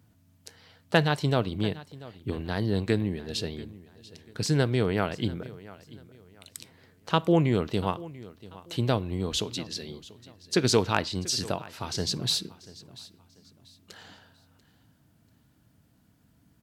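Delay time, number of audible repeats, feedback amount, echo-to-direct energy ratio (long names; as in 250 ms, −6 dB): 689 ms, 2, 31%, −18.5 dB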